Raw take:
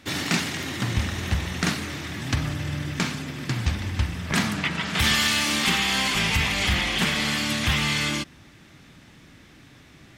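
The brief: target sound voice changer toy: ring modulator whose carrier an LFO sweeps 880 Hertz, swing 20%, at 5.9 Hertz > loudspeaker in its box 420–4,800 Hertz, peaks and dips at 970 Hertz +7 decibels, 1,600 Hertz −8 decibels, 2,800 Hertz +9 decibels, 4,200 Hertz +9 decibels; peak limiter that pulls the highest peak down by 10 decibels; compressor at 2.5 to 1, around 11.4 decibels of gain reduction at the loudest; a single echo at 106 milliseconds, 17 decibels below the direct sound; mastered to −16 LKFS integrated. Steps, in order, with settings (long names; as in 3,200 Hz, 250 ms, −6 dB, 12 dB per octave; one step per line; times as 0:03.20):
downward compressor 2.5 to 1, threshold −36 dBFS
brickwall limiter −27.5 dBFS
single-tap delay 106 ms −17 dB
ring modulator whose carrier an LFO sweeps 880 Hz, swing 20%, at 5.9 Hz
loudspeaker in its box 420–4,800 Hz, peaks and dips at 970 Hz +7 dB, 1,600 Hz −8 dB, 2,800 Hz +9 dB, 4,200 Hz +9 dB
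level +19 dB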